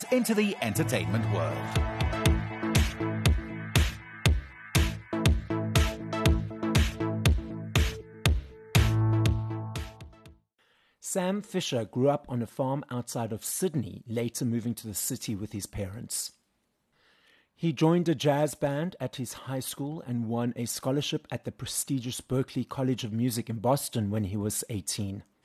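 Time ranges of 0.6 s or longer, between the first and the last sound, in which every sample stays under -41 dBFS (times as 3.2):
10.27–11.04
16.28–17.63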